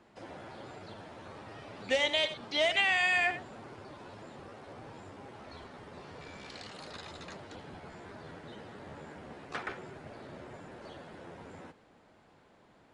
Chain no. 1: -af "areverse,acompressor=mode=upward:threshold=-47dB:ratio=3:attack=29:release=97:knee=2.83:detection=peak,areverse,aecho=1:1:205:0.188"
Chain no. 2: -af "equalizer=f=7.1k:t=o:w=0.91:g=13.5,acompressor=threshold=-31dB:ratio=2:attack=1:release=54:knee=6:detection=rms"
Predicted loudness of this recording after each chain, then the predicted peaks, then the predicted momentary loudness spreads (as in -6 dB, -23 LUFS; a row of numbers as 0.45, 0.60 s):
-31.0, -39.5 LUFS; -15.5, -20.5 dBFS; 21, 17 LU